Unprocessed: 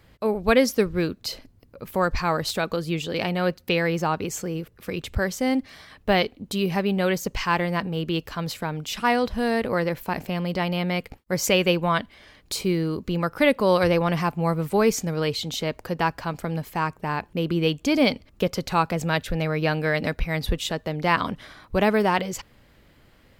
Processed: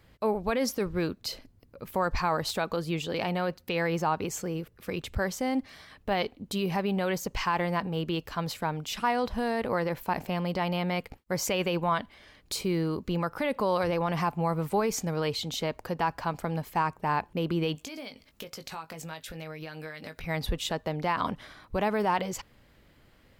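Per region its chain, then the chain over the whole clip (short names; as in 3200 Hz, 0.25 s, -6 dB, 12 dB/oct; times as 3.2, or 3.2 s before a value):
17.75–20.24 tilt +2 dB/oct + compressor 16:1, threshold -33 dBFS + doubler 19 ms -8 dB
whole clip: limiter -16 dBFS; dynamic EQ 890 Hz, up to +6 dB, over -42 dBFS, Q 1.5; gain -4 dB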